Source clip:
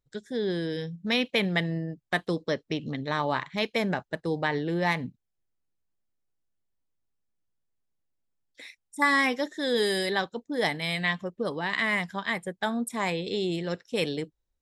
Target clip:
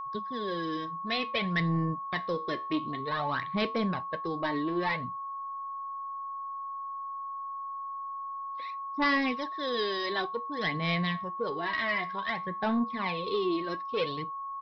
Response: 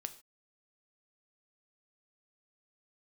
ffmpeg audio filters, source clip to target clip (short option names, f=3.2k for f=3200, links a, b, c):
-af "aphaser=in_gain=1:out_gain=1:delay=3.2:decay=0.64:speed=0.55:type=sinusoidal,aresample=11025,asoftclip=type=tanh:threshold=-18dB,aresample=44100,flanger=delay=7.4:depth=6.3:regen=-75:speed=0.21:shape=sinusoidal,aeval=exprs='val(0)+0.0178*sin(2*PI*1100*n/s)':c=same"